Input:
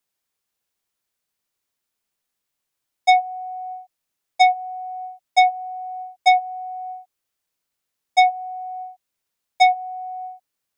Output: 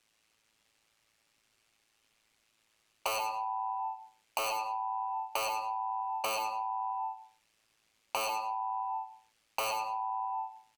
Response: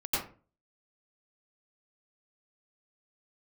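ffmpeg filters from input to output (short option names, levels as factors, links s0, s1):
-filter_complex "[0:a]lowpass=7200,equalizer=f=2100:w=1.6:g=5,asplit=2[s0][s1];[s1]adelay=140,highpass=300,lowpass=3400,asoftclip=type=hard:threshold=0.211,volume=0.0794[s2];[s0][s2]amix=inputs=2:normalize=0,acontrast=72,asetrate=52444,aresample=44100,atempo=0.840896,asoftclip=type=tanh:threshold=0.501,tremolo=f=110:d=0.947,aeval=exprs='0.0841*(abs(mod(val(0)/0.0841+3,4)-2)-1)':c=same,asplit=2[s3][s4];[1:a]atrim=start_sample=2205,afade=t=out:st=0.34:d=0.01,atrim=end_sample=15435[s5];[s4][s5]afir=irnorm=-1:irlink=0,volume=0.335[s6];[s3][s6]amix=inputs=2:normalize=0,acompressor=threshold=0.0126:ratio=5,volume=1.78"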